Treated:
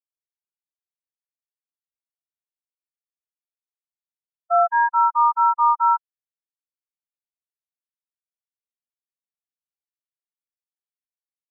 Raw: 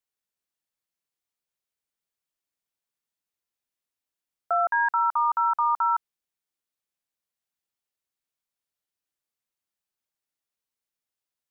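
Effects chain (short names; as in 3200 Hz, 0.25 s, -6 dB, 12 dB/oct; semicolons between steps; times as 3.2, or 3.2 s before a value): LPF 1600 Hz; spectral expander 2.5:1; gain +8 dB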